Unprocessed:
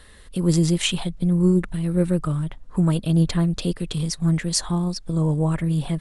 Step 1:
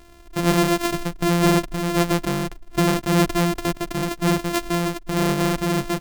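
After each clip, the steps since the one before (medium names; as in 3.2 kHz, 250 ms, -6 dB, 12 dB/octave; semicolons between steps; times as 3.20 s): sorted samples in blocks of 128 samples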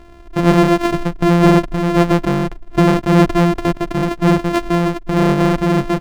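low-pass 1.7 kHz 6 dB/octave; trim +7.5 dB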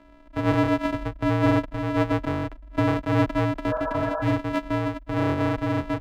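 frequency shift -57 Hz; spectral replace 3.73–4.30 s, 460–1700 Hz; tone controls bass -5 dB, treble -10 dB; trim -7.5 dB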